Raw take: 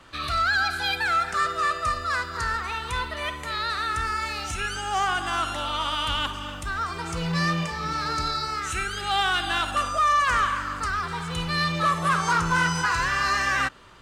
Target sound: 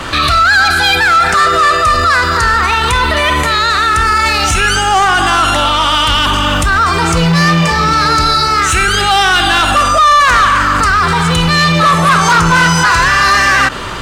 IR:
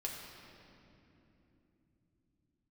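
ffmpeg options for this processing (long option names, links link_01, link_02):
-af "asoftclip=type=tanh:threshold=-21dB,alimiter=level_in=32.5dB:limit=-1dB:release=50:level=0:latency=1,volume=-3.5dB"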